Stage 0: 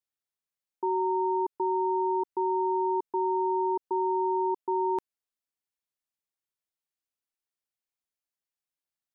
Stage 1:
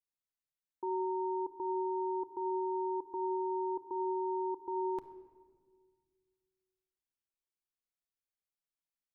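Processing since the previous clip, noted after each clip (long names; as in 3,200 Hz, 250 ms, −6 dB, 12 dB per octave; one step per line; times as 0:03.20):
low-shelf EQ 91 Hz +10.5 dB
rectangular room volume 2,000 cubic metres, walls mixed, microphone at 0.67 metres
level −8.5 dB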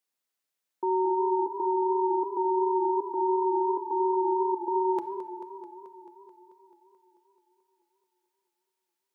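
high-pass filter 230 Hz 12 dB per octave
feedback echo with a swinging delay time 218 ms, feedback 70%, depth 132 cents, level −11.5 dB
level +9 dB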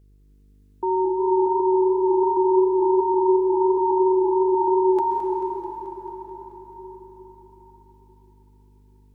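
hum with harmonics 50 Hz, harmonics 9, −58 dBFS −8 dB per octave
dense smooth reverb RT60 4.9 s, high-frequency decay 0.75×, pre-delay 115 ms, DRR 1.5 dB
level +4 dB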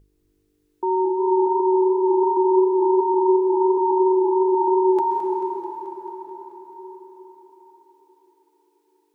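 mains-hum notches 50/100/150/200/250 Hz
level +1 dB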